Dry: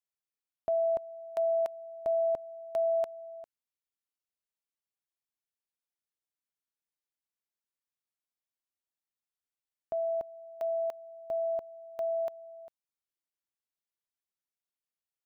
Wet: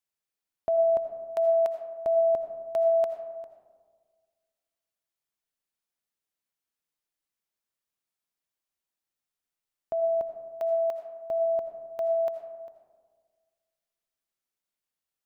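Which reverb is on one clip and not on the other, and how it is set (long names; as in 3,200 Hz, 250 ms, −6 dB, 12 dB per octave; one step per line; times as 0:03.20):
comb and all-pass reverb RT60 1.7 s, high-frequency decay 0.3×, pre-delay 40 ms, DRR 7 dB
level +3.5 dB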